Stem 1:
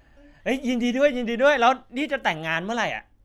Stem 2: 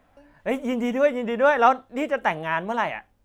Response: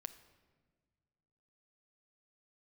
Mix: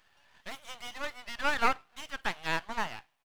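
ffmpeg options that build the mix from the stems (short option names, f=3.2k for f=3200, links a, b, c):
-filter_complex "[0:a]equalizer=f=3.1k:w=1.5:g=7,asoftclip=type=hard:threshold=-17dB,volume=-3.5dB,asplit=2[a][b];[b]volume=-20dB[c];[1:a]highpass=550,adelay=0.4,volume=-2.5dB,asplit=3[d][e][f];[e]volume=-23dB[g];[f]apad=whole_len=143097[h];[a][h]sidechaincompress=threshold=-32dB:ratio=8:attack=5.2:release=319[i];[2:a]atrim=start_sample=2205[j];[c][g]amix=inputs=2:normalize=0[k];[k][j]afir=irnorm=-1:irlink=0[l];[i][d][l]amix=inputs=3:normalize=0,highpass=f=860:w=0.5412,highpass=f=860:w=1.3066,aeval=exprs='max(val(0),0)':c=same"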